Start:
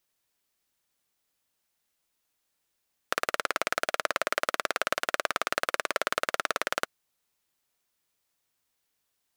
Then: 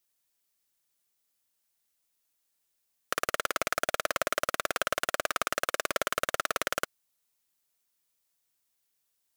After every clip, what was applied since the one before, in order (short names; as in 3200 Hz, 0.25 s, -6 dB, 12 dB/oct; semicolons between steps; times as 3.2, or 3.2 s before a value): sample leveller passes 3; limiter -15 dBFS, peak gain reduction 10 dB; high shelf 4700 Hz +8.5 dB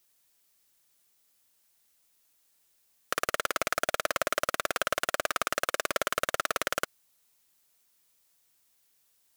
limiter -18.5 dBFS, peak gain reduction 8.5 dB; gain +8.5 dB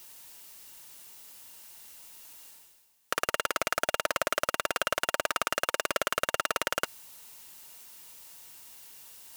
reverse; upward compressor, threshold -33 dBFS; reverse; small resonant body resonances 920/2800 Hz, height 9 dB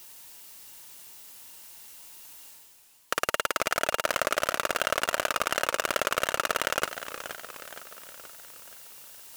warbling echo 0.473 s, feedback 52%, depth 185 cents, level -11 dB; gain +2 dB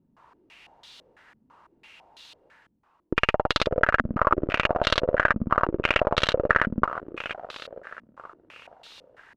echo 0.119 s -15.5 dB; added harmonics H 4 -12 dB, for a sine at -7.5 dBFS; stepped low-pass 6 Hz 230–3800 Hz; gain +1 dB